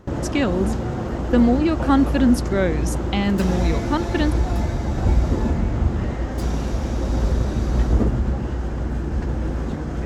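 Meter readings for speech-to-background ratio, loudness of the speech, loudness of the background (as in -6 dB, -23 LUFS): 2.5 dB, -21.5 LUFS, -24.0 LUFS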